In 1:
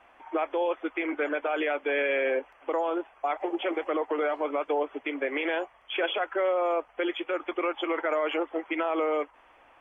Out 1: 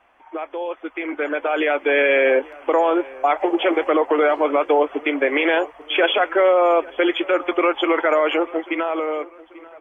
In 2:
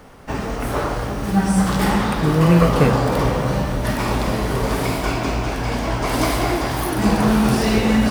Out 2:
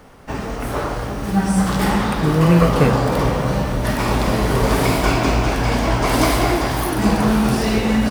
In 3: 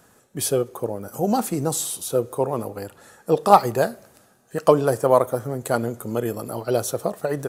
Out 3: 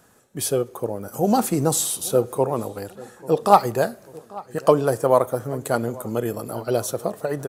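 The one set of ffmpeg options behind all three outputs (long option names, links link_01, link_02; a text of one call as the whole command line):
ffmpeg -i in.wav -filter_complex "[0:a]dynaudnorm=framelen=220:gausssize=13:maxgain=12dB,asplit=2[link_01][link_02];[link_02]adelay=840,lowpass=frequency=2900:poles=1,volume=-21dB,asplit=2[link_03][link_04];[link_04]adelay=840,lowpass=frequency=2900:poles=1,volume=0.47,asplit=2[link_05][link_06];[link_06]adelay=840,lowpass=frequency=2900:poles=1,volume=0.47[link_07];[link_01][link_03][link_05][link_07]amix=inputs=4:normalize=0,volume=-1dB" out.wav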